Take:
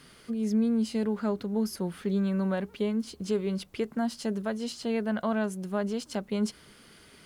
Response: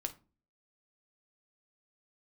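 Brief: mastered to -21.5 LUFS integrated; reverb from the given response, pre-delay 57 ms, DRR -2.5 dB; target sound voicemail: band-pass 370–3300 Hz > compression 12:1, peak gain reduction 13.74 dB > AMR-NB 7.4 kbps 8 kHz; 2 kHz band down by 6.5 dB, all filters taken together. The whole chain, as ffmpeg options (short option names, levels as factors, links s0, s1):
-filter_complex "[0:a]equalizer=f=2000:t=o:g=-9,asplit=2[s0][s1];[1:a]atrim=start_sample=2205,adelay=57[s2];[s1][s2]afir=irnorm=-1:irlink=0,volume=1.41[s3];[s0][s3]amix=inputs=2:normalize=0,highpass=370,lowpass=3300,acompressor=threshold=0.0158:ratio=12,volume=10" -ar 8000 -c:a libopencore_amrnb -b:a 7400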